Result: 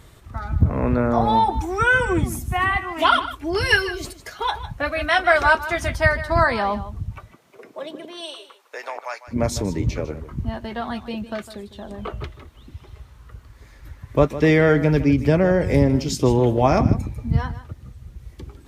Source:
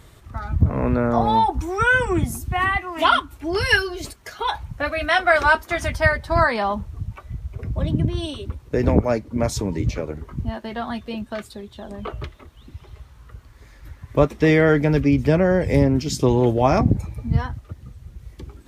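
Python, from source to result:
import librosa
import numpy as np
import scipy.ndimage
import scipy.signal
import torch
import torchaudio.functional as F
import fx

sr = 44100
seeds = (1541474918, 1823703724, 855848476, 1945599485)

y = fx.highpass(x, sr, hz=fx.line((7.18, 240.0), (9.27, 1000.0)), slope=24, at=(7.18, 9.27), fade=0.02)
y = y + 10.0 ** (-14.0 / 20.0) * np.pad(y, (int(154 * sr / 1000.0), 0))[:len(y)]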